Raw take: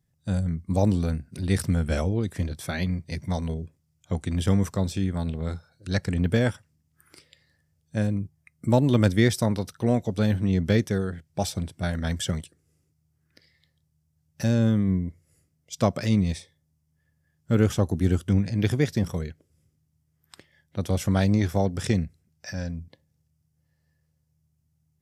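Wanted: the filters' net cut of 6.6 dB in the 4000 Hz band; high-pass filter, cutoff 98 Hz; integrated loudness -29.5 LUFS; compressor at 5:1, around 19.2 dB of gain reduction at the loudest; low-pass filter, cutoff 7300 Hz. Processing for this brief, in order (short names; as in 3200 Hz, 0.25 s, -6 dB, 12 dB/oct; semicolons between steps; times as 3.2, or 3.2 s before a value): HPF 98 Hz; LPF 7300 Hz; bell 4000 Hz -8 dB; compressor 5:1, threshold -39 dBFS; gain +13.5 dB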